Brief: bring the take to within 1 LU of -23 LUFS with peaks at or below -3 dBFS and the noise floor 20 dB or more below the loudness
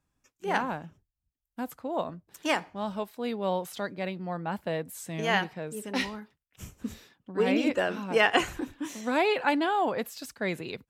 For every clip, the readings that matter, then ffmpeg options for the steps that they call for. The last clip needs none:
loudness -30.0 LUFS; peak level -8.5 dBFS; loudness target -23.0 LUFS
-> -af "volume=2.24,alimiter=limit=0.708:level=0:latency=1"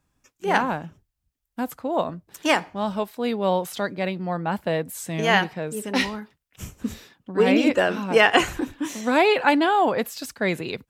loudness -23.0 LUFS; peak level -3.0 dBFS; noise floor -79 dBFS

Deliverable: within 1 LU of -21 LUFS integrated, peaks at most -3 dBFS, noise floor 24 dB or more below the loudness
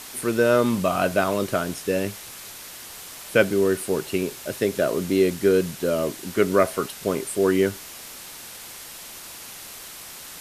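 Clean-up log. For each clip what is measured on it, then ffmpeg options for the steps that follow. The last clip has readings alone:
noise floor -40 dBFS; noise floor target -47 dBFS; loudness -23.0 LUFS; peak level -4.0 dBFS; loudness target -21.0 LUFS
-> -af "afftdn=nr=7:nf=-40"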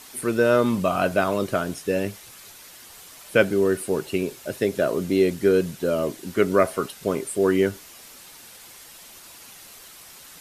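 noise floor -46 dBFS; noise floor target -47 dBFS
-> -af "afftdn=nr=6:nf=-46"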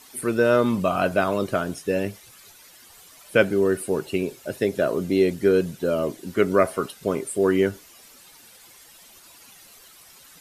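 noise floor -50 dBFS; loudness -23.0 LUFS; peak level -4.0 dBFS; loudness target -21.0 LUFS
-> -af "volume=1.26,alimiter=limit=0.708:level=0:latency=1"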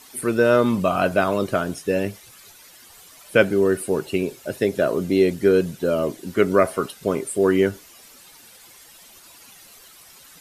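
loudness -21.0 LUFS; peak level -3.0 dBFS; noise floor -48 dBFS

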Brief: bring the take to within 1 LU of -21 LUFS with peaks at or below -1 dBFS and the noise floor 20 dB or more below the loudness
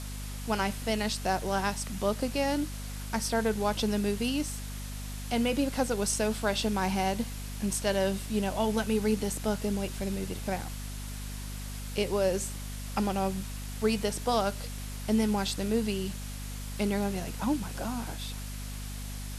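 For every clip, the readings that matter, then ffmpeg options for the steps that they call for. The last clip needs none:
hum 50 Hz; highest harmonic 250 Hz; hum level -36 dBFS; noise floor -38 dBFS; noise floor target -51 dBFS; loudness -31.0 LUFS; peak level -15.0 dBFS; loudness target -21.0 LUFS
-> -af "bandreject=f=50:t=h:w=6,bandreject=f=100:t=h:w=6,bandreject=f=150:t=h:w=6,bandreject=f=200:t=h:w=6,bandreject=f=250:t=h:w=6"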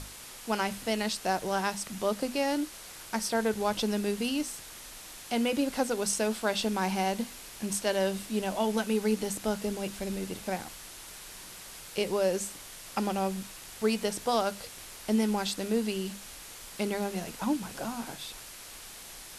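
hum not found; noise floor -46 dBFS; noise floor target -51 dBFS
-> -af "afftdn=nr=6:nf=-46"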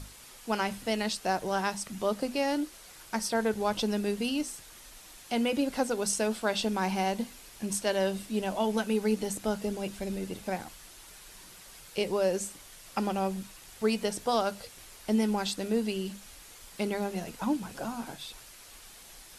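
noise floor -51 dBFS; loudness -31.0 LUFS; peak level -15.5 dBFS; loudness target -21.0 LUFS
-> -af "volume=3.16"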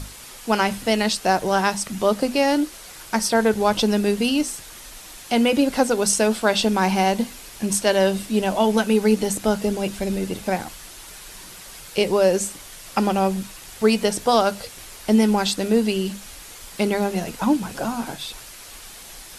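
loudness -21.0 LUFS; peak level -5.5 dBFS; noise floor -41 dBFS

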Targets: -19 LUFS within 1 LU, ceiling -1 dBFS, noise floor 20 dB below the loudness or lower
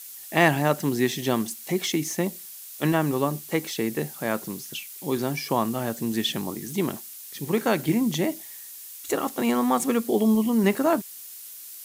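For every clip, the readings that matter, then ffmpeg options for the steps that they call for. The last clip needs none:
noise floor -42 dBFS; noise floor target -46 dBFS; loudness -25.5 LUFS; peak level -4.0 dBFS; loudness target -19.0 LUFS
-> -af "afftdn=nr=6:nf=-42"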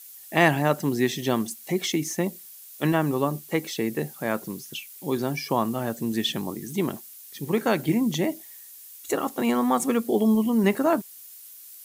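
noise floor -46 dBFS; loudness -25.5 LUFS; peak level -4.0 dBFS; loudness target -19.0 LUFS
-> -af "volume=2.11,alimiter=limit=0.891:level=0:latency=1"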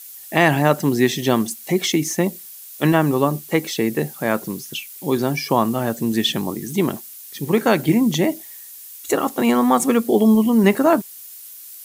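loudness -19.0 LUFS; peak level -1.0 dBFS; noise floor -39 dBFS

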